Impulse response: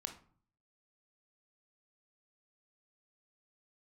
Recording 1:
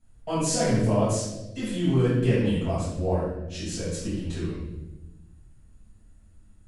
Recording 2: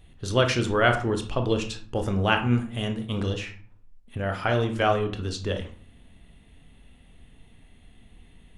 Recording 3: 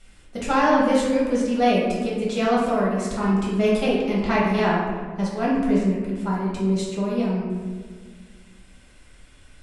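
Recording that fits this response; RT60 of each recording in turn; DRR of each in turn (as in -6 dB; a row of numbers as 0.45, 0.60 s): 2; 1.0, 0.50, 1.7 s; -13.0, 5.0, -6.0 dB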